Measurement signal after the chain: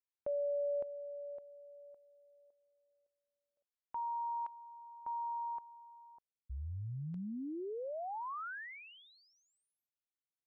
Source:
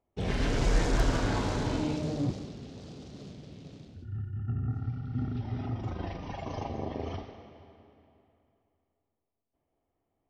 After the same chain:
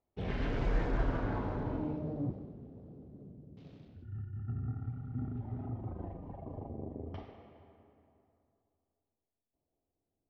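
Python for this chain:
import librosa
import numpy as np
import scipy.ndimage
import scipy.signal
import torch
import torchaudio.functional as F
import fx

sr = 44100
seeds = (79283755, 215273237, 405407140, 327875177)

y = fx.filter_lfo_lowpass(x, sr, shape='saw_down', hz=0.28, low_hz=390.0, high_hz=3500.0, q=0.74)
y = y * 10.0 ** (-5.5 / 20.0)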